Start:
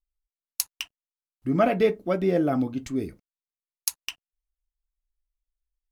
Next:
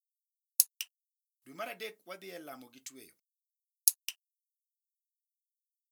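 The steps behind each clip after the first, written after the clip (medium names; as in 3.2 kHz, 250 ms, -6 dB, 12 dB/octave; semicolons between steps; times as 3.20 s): differentiator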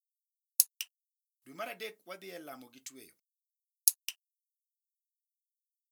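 no audible change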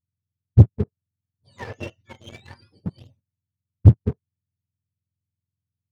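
spectrum inverted on a logarithmic axis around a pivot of 1.1 kHz; waveshaping leveller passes 2; trim +1.5 dB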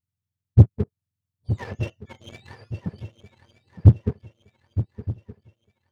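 shuffle delay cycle 1219 ms, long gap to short 3:1, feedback 38%, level -13 dB; trim -1 dB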